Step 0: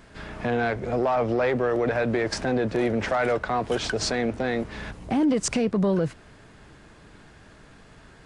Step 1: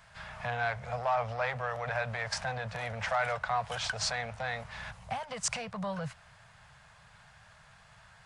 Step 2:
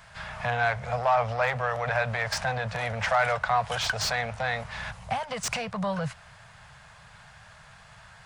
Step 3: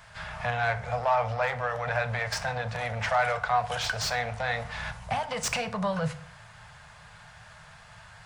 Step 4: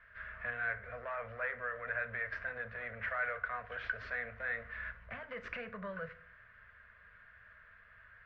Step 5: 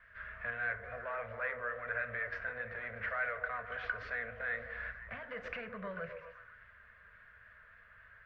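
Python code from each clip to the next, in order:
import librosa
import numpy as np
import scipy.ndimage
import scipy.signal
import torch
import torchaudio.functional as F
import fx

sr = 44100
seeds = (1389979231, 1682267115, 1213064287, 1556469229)

y1 = scipy.signal.sosfilt(scipy.signal.cheby1(2, 1.0, [130.0, 760.0], 'bandstop', fs=sr, output='sos'), x)
y1 = fx.low_shelf(y1, sr, hz=70.0, db=-12.0)
y1 = y1 * librosa.db_to_amplitude(-3.0)
y2 = fx.slew_limit(y1, sr, full_power_hz=120.0)
y2 = y2 * librosa.db_to_amplitude(6.5)
y3 = fx.rider(y2, sr, range_db=3, speed_s=2.0)
y3 = fx.rev_fdn(y3, sr, rt60_s=0.56, lf_ratio=1.25, hf_ratio=0.7, size_ms=20.0, drr_db=8.5)
y3 = y3 * librosa.db_to_amplitude(-2.0)
y4 = fx.ladder_lowpass(y3, sr, hz=2000.0, resonance_pct=50)
y4 = fx.fixed_phaser(y4, sr, hz=340.0, stages=4)
y4 = y4 * librosa.db_to_amplitude(1.0)
y5 = fx.echo_stepped(y4, sr, ms=128, hz=390.0, octaves=0.7, feedback_pct=70, wet_db=-4.5)
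y5 = fx.vibrato(y5, sr, rate_hz=3.5, depth_cents=31.0)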